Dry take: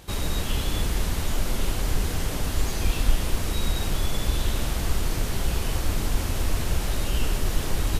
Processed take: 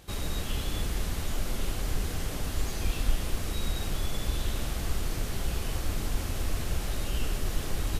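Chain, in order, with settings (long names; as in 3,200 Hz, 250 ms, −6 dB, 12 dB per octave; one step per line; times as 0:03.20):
notch filter 940 Hz, Q 17
level −5.5 dB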